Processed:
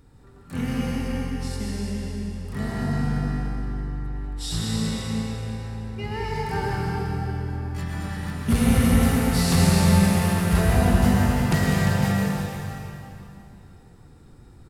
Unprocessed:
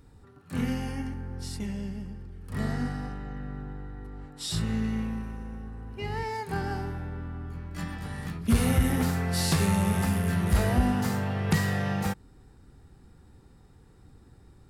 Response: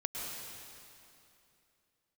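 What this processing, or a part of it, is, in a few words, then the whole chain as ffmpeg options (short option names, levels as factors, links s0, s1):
cave: -filter_complex "[0:a]aecho=1:1:346:0.355[s0];[1:a]atrim=start_sample=2205[s1];[s0][s1]afir=irnorm=-1:irlink=0,volume=1.33"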